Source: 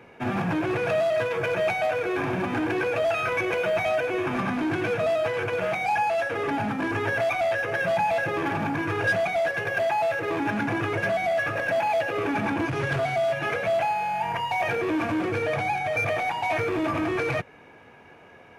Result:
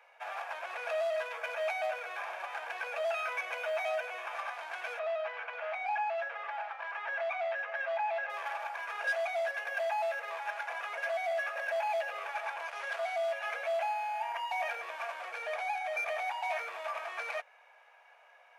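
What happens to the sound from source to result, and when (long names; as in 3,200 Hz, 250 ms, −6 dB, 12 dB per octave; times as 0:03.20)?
0:04.99–0:08.30: band-pass filter 530–2,900 Hz
whole clip: Butterworth high-pass 580 Hz 48 dB per octave; level −8 dB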